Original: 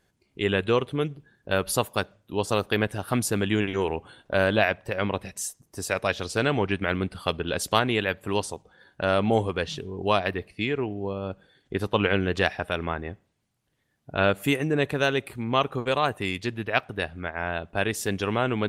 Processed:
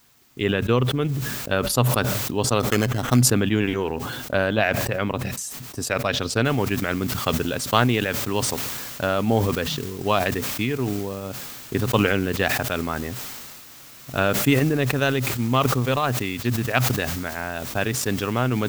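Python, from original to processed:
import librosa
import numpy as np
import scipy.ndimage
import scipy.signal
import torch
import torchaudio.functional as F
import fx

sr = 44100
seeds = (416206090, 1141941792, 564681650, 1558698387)

y = fx.sample_hold(x, sr, seeds[0], rate_hz=4700.0, jitter_pct=0, at=(2.6, 3.23))
y = fx.noise_floor_step(y, sr, seeds[1], at_s=6.45, before_db=-56, after_db=-42, tilt_db=0.0)
y = fx.transient(y, sr, attack_db=4, sustain_db=-9)
y = fx.graphic_eq_31(y, sr, hz=(125, 250, 1250, 10000), db=(11, 8, 3, -6))
y = fx.sustainer(y, sr, db_per_s=26.0)
y = y * 10.0 ** (-2.0 / 20.0)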